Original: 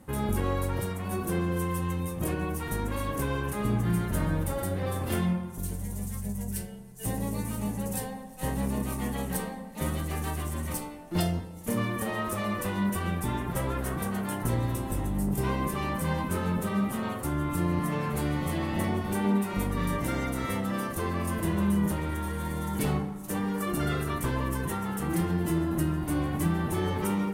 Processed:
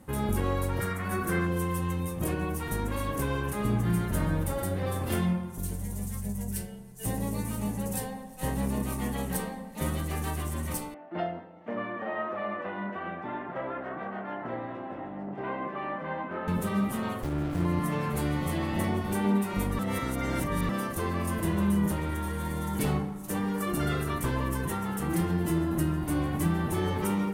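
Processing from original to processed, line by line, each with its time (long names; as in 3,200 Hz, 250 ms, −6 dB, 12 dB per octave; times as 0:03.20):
0:00.80–0:01.47: flat-topped bell 1,600 Hz +9 dB 1.1 octaves
0:10.94–0:16.48: loudspeaker in its box 330–2,400 Hz, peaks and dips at 440 Hz −5 dB, 670 Hz +6 dB, 1,000 Hz −3 dB, 2,400 Hz −4 dB
0:17.23–0:17.65: windowed peak hold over 33 samples
0:19.79–0:20.69: reverse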